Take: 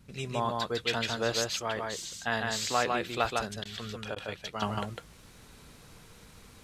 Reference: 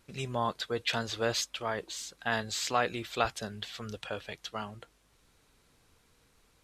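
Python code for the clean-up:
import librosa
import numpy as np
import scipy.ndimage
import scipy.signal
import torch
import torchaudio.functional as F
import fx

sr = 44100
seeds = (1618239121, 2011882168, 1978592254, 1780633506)

y = fx.fix_interpolate(x, sr, at_s=(3.64, 4.15), length_ms=11.0)
y = fx.noise_reduce(y, sr, print_start_s=5.02, print_end_s=5.52, reduce_db=13.0)
y = fx.fix_echo_inverse(y, sr, delay_ms=153, level_db=-3.0)
y = fx.fix_level(y, sr, at_s=4.62, step_db=-10.5)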